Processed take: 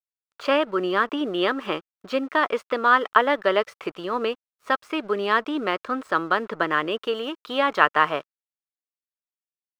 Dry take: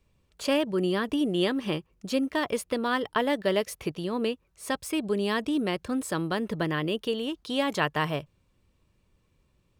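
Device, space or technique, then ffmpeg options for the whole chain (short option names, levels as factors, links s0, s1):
pocket radio on a weak battery: -af "highpass=380,lowpass=3100,aeval=exprs='sgn(val(0))*max(abs(val(0))-0.00168,0)':c=same,equalizer=f=1300:t=o:w=0.57:g=11,volume=1.88"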